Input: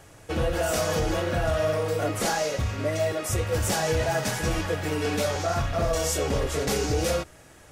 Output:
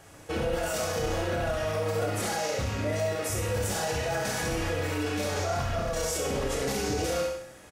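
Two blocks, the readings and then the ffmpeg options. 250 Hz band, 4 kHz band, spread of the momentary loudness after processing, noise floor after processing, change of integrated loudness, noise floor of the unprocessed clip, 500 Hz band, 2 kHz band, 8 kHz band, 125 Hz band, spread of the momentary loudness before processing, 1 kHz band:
−3.0 dB, −3.0 dB, 1 LU, −49 dBFS, −3.0 dB, −51 dBFS, −3.0 dB, −2.5 dB, −2.5 dB, −4.0 dB, 3 LU, −3.0 dB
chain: -filter_complex "[0:a]lowshelf=frequency=61:gain=-7.5,asplit=2[link_01][link_02];[link_02]aecho=0:1:30|63|99.3|139.2|183.2:0.631|0.398|0.251|0.158|0.1[link_03];[link_01][link_03]amix=inputs=2:normalize=0,alimiter=limit=-20dB:level=0:latency=1:release=36,asplit=2[link_04][link_05];[link_05]aecho=0:1:67|134|201|268|335:0.447|0.197|0.0865|0.0381|0.0167[link_06];[link_04][link_06]amix=inputs=2:normalize=0,volume=-2dB"

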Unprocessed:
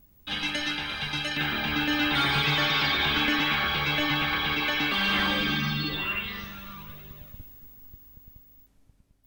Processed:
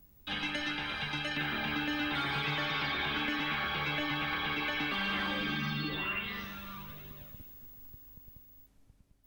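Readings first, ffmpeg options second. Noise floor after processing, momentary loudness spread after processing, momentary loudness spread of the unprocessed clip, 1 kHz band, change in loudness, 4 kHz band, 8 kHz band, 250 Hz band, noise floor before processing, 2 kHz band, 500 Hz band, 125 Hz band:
−63 dBFS, 17 LU, 17 LU, −6.5 dB, −8.0 dB, −9.5 dB, below −10 dB, −6.5 dB, −61 dBFS, −7.0 dB, −6.0 dB, −7.0 dB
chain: -filter_complex "[0:a]acrossover=split=130|3000[link_01][link_02][link_03];[link_01]acompressor=threshold=-48dB:ratio=4[link_04];[link_02]acompressor=threshold=-30dB:ratio=4[link_05];[link_03]acompressor=threshold=-45dB:ratio=4[link_06];[link_04][link_05][link_06]amix=inputs=3:normalize=0,volume=-2dB"

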